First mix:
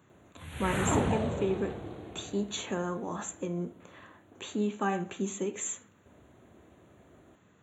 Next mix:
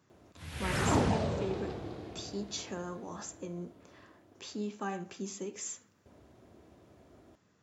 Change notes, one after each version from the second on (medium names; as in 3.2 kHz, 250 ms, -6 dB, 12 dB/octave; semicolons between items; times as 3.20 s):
speech -7.0 dB; master: remove Butterworth band-stop 5.1 kHz, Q 1.8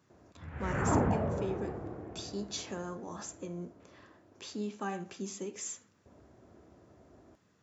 background: add low-pass 1.8 kHz 24 dB/octave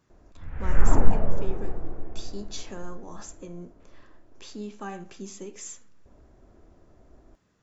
master: remove high-pass 81 Hz 24 dB/octave